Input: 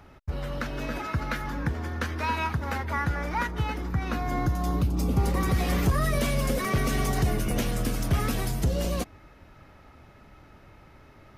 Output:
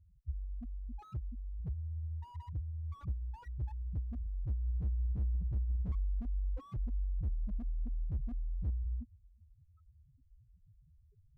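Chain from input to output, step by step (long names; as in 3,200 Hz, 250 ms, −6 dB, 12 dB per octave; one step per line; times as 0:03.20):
spectral peaks only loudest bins 1
slew-rate limiting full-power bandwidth 2.4 Hz
level −1 dB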